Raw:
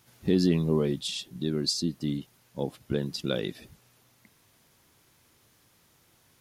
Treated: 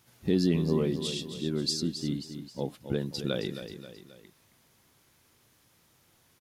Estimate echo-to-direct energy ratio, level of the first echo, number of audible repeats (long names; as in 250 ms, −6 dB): −9.0 dB, −10.0 dB, 3